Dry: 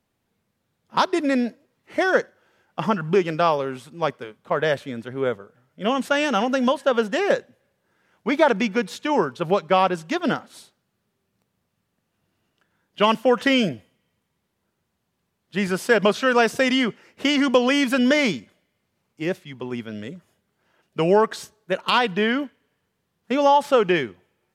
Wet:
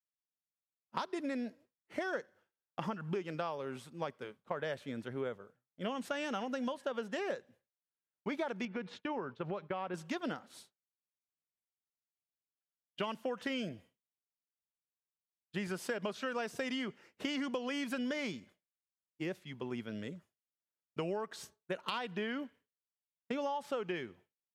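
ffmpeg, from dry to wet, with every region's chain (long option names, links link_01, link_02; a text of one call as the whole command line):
ffmpeg -i in.wav -filter_complex "[0:a]asettb=1/sr,asplit=3[link_01][link_02][link_03];[link_01]atrim=end=8.654[link_04];[link_02]atrim=start=8.65:end=9.94,asetpts=PTS-STARTPTS,afade=type=in:duration=0.004:curve=qsin,afade=type=out:start_time=1.286:duration=0.004:curve=qsin,agate=range=-33dB:threshold=-37dB:ratio=3:release=100:detection=peak,lowpass=2900,acompressor=threshold=-25dB:ratio=2:attack=3.2:release=140:knee=1:detection=peak[link_05];[link_03]atrim=start=9.936[link_06];[link_04][link_05]acrossfade=duration=0.004:curve1=hsin:curve2=qsin[link_07];[link_07][link_06]acrossfade=duration=0.004:curve1=qsin:curve2=hsin,agate=range=-33dB:threshold=-42dB:ratio=3:detection=peak,acompressor=threshold=-26dB:ratio=6,volume=-8.5dB" out.wav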